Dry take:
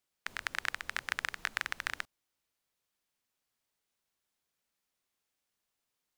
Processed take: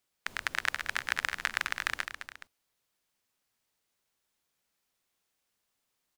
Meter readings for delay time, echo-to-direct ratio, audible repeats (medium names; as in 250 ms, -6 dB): 210 ms, -8.0 dB, 2